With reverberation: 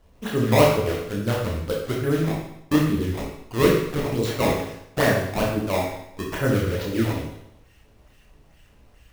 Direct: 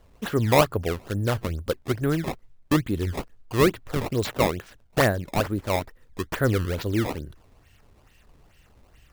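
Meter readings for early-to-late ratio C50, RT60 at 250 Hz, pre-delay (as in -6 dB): 2.0 dB, 0.75 s, 18 ms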